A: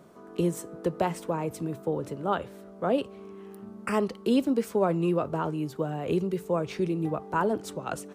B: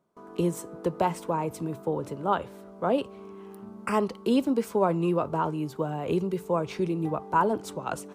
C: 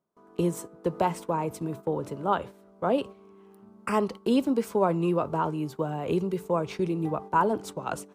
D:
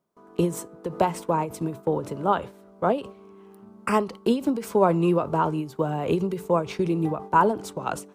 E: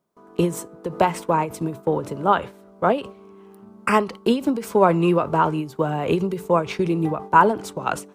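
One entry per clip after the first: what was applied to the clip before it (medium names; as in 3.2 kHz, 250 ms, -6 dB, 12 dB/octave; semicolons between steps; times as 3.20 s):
gate with hold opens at -41 dBFS; peaking EQ 960 Hz +6 dB 0.45 oct; band-stop 1.8 kHz, Q 20
gate -38 dBFS, range -9 dB
endings held to a fixed fall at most 160 dB/s; trim +4.5 dB
dynamic bell 2 kHz, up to +6 dB, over -38 dBFS, Q 0.85; trim +2.5 dB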